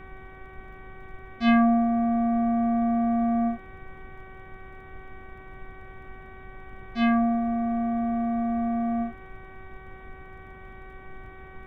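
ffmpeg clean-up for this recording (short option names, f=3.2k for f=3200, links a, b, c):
-af "adeclick=t=4,bandreject=f=379.1:t=h:w=4,bandreject=f=758.2:t=h:w=4,bandreject=f=1.1373k:t=h:w=4,bandreject=f=1.5164k:t=h:w=4,bandreject=f=1.8955k:t=h:w=4,bandreject=f=2.2746k:t=h:w=4,afftdn=nr=27:nf=-45"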